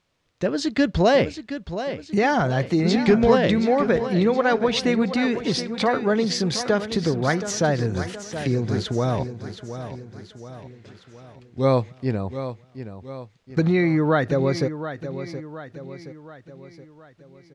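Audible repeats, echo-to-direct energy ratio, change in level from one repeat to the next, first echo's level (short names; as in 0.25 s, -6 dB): 4, -10.0 dB, -6.0 dB, -11.0 dB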